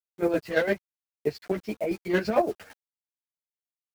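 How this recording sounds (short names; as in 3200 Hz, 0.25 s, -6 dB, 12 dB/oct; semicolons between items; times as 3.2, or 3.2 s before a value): a quantiser's noise floor 8-bit, dither none; chopped level 8.9 Hz, depth 60%, duty 40%; a shimmering, thickened sound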